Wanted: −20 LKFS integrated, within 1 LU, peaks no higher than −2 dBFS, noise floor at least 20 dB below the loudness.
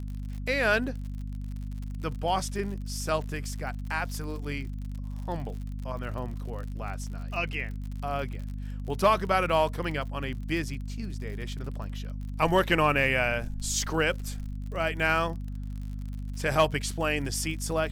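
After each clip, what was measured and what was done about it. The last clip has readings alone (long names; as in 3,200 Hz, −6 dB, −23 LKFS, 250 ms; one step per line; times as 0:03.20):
crackle rate 57 per second; mains hum 50 Hz; hum harmonics up to 250 Hz; level of the hum −32 dBFS; integrated loudness −30.0 LKFS; sample peak −11.5 dBFS; target loudness −20.0 LKFS
→ click removal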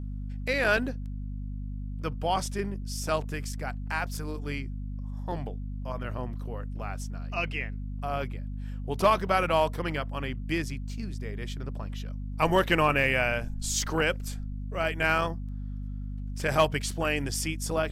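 crackle rate 0.17 per second; mains hum 50 Hz; hum harmonics up to 250 Hz; level of the hum −32 dBFS
→ mains-hum notches 50/100/150/200/250 Hz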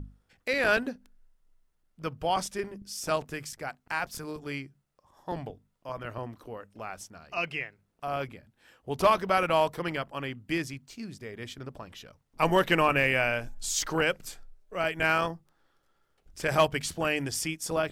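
mains hum none found; integrated loudness −29.0 LKFS; sample peak −11.5 dBFS; target loudness −20.0 LKFS
→ level +9 dB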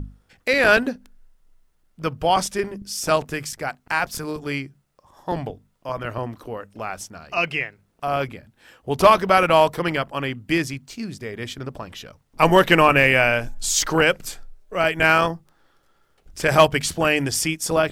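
integrated loudness −20.0 LKFS; sample peak −2.5 dBFS; background noise floor −64 dBFS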